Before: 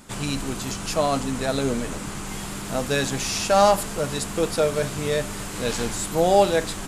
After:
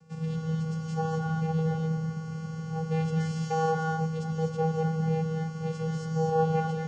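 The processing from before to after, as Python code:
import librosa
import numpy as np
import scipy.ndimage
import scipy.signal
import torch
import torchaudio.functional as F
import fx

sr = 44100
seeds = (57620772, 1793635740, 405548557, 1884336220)

y = fx.peak_eq(x, sr, hz=3000.0, db=-5.5, octaves=1.0)
y = fx.vocoder(y, sr, bands=8, carrier='square', carrier_hz=160.0)
y = fx.rev_gated(y, sr, seeds[0], gate_ms=280, shape='rising', drr_db=0.5)
y = F.gain(torch.from_numpy(y), -6.5).numpy()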